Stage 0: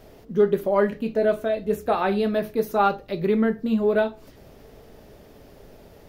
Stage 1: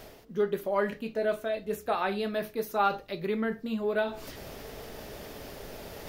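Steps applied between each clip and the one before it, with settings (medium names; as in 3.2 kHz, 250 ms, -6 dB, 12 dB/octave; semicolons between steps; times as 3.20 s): tilt shelf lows -4.5 dB, about 740 Hz; reverse; upward compressor, threshold -23 dBFS; reverse; trim -6.5 dB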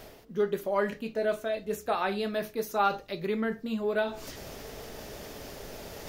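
dynamic bell 6.5 kHz, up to +6 dB, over -59 dBFS, Q 1.6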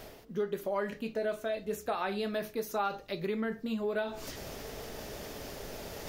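compression 2.5:1, threshold -31 dBFS, peak gain reduction 7.5 dB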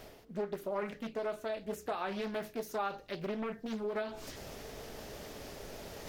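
loudspeaker Doppler distortion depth 0.67 ms; trim -3.5 dB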